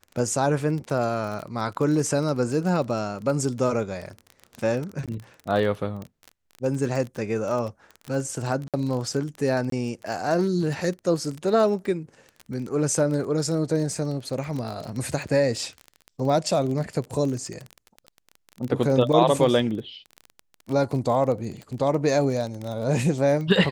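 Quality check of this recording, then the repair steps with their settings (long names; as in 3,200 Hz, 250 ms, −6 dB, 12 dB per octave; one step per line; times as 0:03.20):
surface crackle 26 per second −29 dBFS
0:05.06–0:05.08: drop-out 17 ms
0:08.68–0:08.74: drop-out 57 ms
0:09.70–0:09.72: drop-out 23 ms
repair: click removal
repair the gap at 0:05.06, 17 ms
repair the gap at 0:08.68, 57 ms
repair the gap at 0:09.70, 23 ms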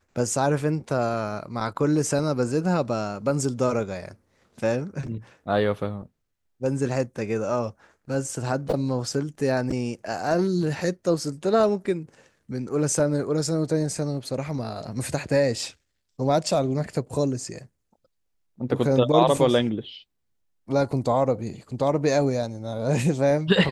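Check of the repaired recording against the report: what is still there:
none of them is left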